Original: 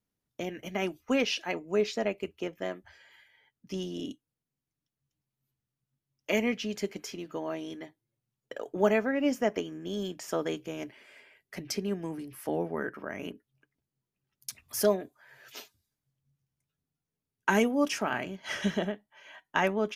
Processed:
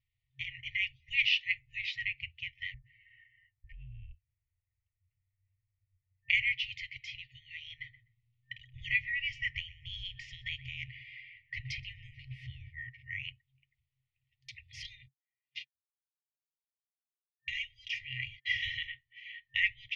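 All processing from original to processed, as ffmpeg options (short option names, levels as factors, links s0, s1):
-filter_complex "[0:a]asettb=1/sr,asplit=3[s0][s1][s2];[s0]atrim=end=2.744[s3];[s1]atrim=start=2.74:end=6.3,asetpts=PTS-STARTPTS,afade=t=in:d=0.004:c=qsin,afade=t=out:st=3.556:d=0.004:c=qsin,lowpass=f=2200:w=0.5412,lowpass=f=2200:w=1.3066,acompressor=threshold=0.00224:ratio=4:attack=3.2:release=140:knee=1:detection=peak,afreqshift=-230[s4];[s2]atrim=start=6.296[s5];[s3][s4]acrossfade=d=0.004:c1=hsin:c2=qsin[s6];[s6][s5]acrossfade=d=0.004:c1=qsin:c2=hsin,asettb=1/sr,asplit=3[s7][s8][s9];[s7]atrim=end=7.784[s10];[s8]atrim=start=7.78:end=12.68,asetpts=PTS-STARTPTS,afade=t=in:d=0.004:c=qsin,afade=t=out:st=4.896:d=0.004:c=qsin,lowshelf=f=400:g=8,asplit=2[s11][s12];[s12]adelay=125,lowpass=f=980:p=1,volume=0.316,asplit=2[s13][s14];[s14]adelay=125,lowpass=f=980:p=1,volume=0.29,asplit=2[s15][s16];[s16]adelay=125,lowpass=f=980:p=1,volume=0.29[s17];[s11][s13][s15][s17]amix=inputs=4:normalize=0,atrim=end_sample=216090[s18];[s9]atrim=start=12.676[s19];[s10][s18]acrossfade=d=0.004:c1=hsin:c2=qsin[s20];[s20][s19]acrossfade=d=0.004:c1=qsin:c2=hsin,asettb=1/sr,asplit=3[s21][s22][s23];[s21]atrim=end=14.824[s24];[s22]atrim=start=14.82:end=18.58,asetpts=PTS-STARTPTS,afade=t=in:d=0.004:c=qsin,afade=t=out:st=3.756:d=0.004:c=qsin,agate=range=0.00708:threshold=0.00447:ratio=16:release=100:detection=peak,aecho=1:1:2.5:0.55,atrim=end_sample=165816,acrossover=split=220|2600[s25][s26][s27];[s25]acompressor=threshold=0.00447:ratio=4[s28];[s26]acompressor=threshold=0.0141:ratio=4[s29];[s27]acompressor=threshold=0.0112:ratio=4[s30];[s28][s29][s30]amix=inputs=3:normalize=0[s31];[s23]atrim=start=18.576[s32];[s24][s31]acrossfade=d=0.004:c1=hsin:c2=qsin[s33];[s33][s32]acrossfade=d=0.004:c1=qsin:c2=hsin,lowpass=f=3200:w=0.5412,lowpass=f=3200:w=1.3066,afftfilt=real='re*(1-between(b*sr/4096,130,1800))':imag='im*(1-between(b*sr/4096,130,1800))':win_size=4096:overlap=0.75,volume=2.24"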